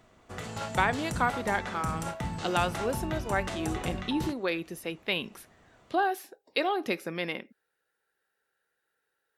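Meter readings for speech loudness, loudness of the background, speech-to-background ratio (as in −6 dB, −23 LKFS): −31.5 LKFS, −36.0 LKFS, 4.5 dB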